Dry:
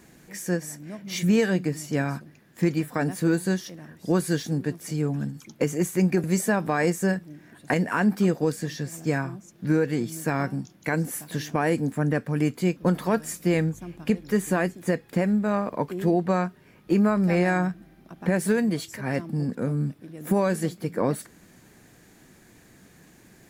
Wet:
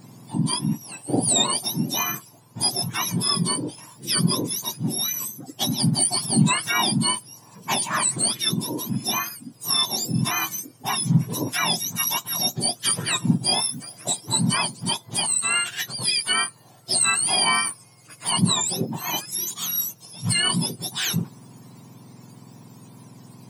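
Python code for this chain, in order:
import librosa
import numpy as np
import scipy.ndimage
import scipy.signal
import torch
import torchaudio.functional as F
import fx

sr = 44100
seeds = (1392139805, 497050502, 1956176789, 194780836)

y = fx.octave_mirror(x, sr, pivot_hz=1300.0)
y = fx.quant_float(y, sr, bits=6, at=(11.32, 11.83))
y = y * 10.0 ** (5.5 / 20.0)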